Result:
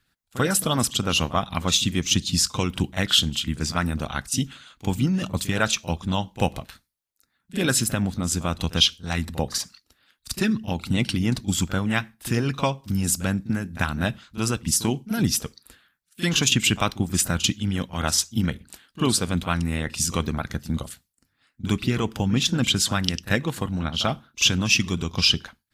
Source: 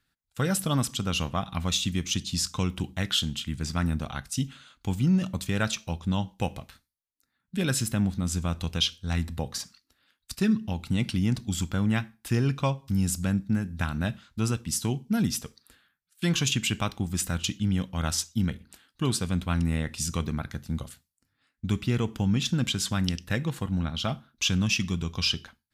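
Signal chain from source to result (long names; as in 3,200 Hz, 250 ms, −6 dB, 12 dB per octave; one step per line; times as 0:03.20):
echo ahead of the sound 41 ms −13 dB
harmonic and percussive parts rebalanced percussive +9 dB
level −1 dB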